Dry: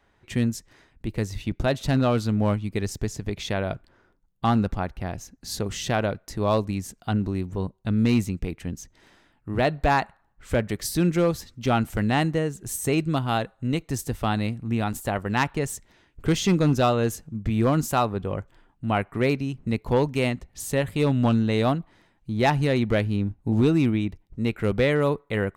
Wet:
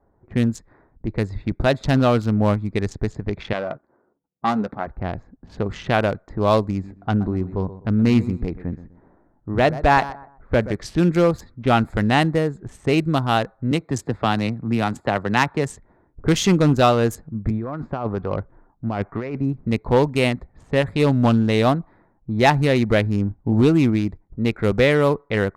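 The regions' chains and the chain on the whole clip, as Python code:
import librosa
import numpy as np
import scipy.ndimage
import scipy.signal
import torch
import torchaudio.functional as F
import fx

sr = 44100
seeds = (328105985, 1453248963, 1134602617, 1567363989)

y = fx.chain(x, sr, fx.halfwave_gain(db=-7.0),
    fx.highpass(hz=200.0, slope=12),
    fx.doubler(ms=14.0, db=-11.0), at=(3.53, 4.87))
y = fx.chain(y, sr, fx.high_shelf(hz=4600.0, db=-8.0),
    fx.echo_feedback(ms=125, feedback_pct=30, wet_db=-14.5), at=(6.71, 10.74))
y = fx.chain(y, sr, fx.highpass(hz=100.0, slope=12),
    fx.band_squash(depth_pct=40), at=(13.71, 15.7))
y = fx.chain(y, sr, fx.lowpass(hz=4200.0, slope=12),
    fx.over_compress(threshold_db=-26.0, ratio=-1.0),
    fx.harmonic_tremolo(hz=2.0, depth_pct=50, crossover_hz=610.0), at=(17.5, 19.53))
y = fx.wiener(y, sr, points=15)
y = fx.env_lowpass(y, sr, base_hz=750.0, full_db=-20.5)
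y = fx.low_shelf(y, sr, hz=480.0, db=-3.5)
y = y * 10.0 ** (7.0 / 20.0)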